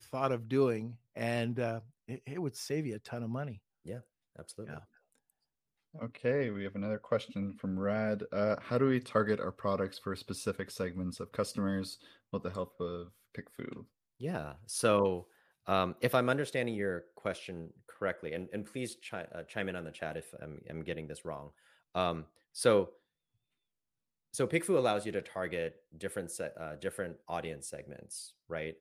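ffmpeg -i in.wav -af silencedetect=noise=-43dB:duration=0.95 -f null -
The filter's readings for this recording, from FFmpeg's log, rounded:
silence_start: 4.79
silence_end: 5.95 | silence_duration: 1.16
silence_start: 22.89
silence_end: 24.34 | silence_duration: 1.45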